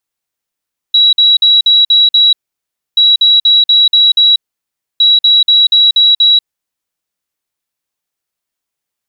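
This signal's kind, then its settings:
beeps in groups sine 3,890 Hz, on 0.19 s, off 0.05 s, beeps 6, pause 0.64 s, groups 3, −4 dBFS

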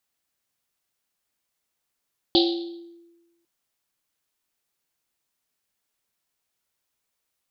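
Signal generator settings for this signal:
drum after Risset, pitch 340 Hz, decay 1.21 s, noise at 3,900 Hz, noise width 1,400 Hz, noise 35%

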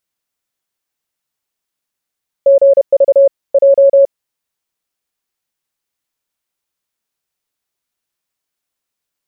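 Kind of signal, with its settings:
Morse code "GV J" 31 words per minute 553 Hz −3.5 dBFS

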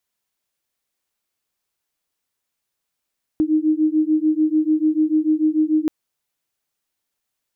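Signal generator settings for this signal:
two tones that beat 307 Hz, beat 6.8 Hz, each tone −18 dBFS 2.48 s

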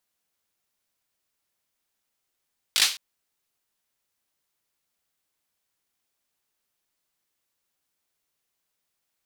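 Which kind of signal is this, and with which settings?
synth clap length 0.21 s, bursts 4, apart 19 ms, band 3,700 Hz, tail 0.34 s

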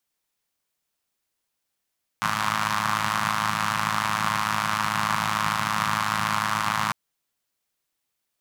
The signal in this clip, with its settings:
pulse-train model of a four-cylinder engine, steady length 4.70 s, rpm 3,200, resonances 160/1,100 Hz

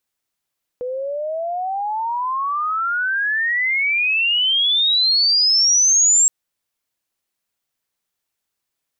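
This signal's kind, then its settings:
glide logarithmic 490 Hz → 7,600 Hz −22.5 dBFS → −10.5 dBFS 5.47 s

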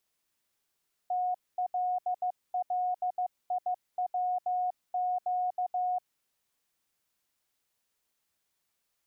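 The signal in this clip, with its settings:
Morse code "TLLIWQ" 15 words per minute 727 Hz −27 dBFS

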